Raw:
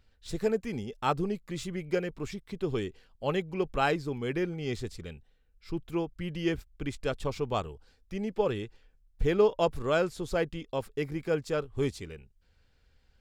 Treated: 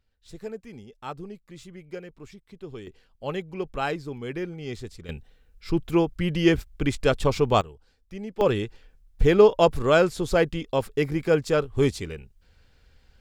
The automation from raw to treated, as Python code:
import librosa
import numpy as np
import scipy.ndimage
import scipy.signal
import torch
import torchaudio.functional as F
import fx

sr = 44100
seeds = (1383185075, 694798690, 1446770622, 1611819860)

y = fx.gain(x, sr, db=fx.steps((0.0, -8.0), (2.87, -1.0), (5.09, 10.0), (7.61, -2.0), (8.41, 8.0)))